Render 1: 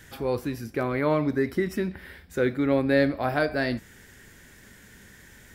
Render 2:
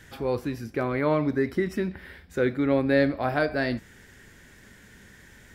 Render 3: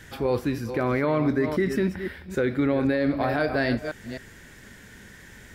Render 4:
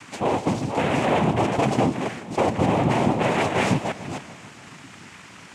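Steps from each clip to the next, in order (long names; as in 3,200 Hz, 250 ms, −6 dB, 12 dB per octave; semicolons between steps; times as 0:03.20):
high-shelf EQ 8,700 Hz −8.5 dB
delay that plays each chunk backwards 261 ms, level −11 dB; brickwall limiter −18.5 dBFS, peak gain reduction 10.5 dB; level +4 dB
hard clipping −20 dBFS, distortion −15 dB; cochlear-implant simulation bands 4; feedback echo with a swinging delay time 147 ms, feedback 63%, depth 205 cents, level −15.5 dB; level +4 dB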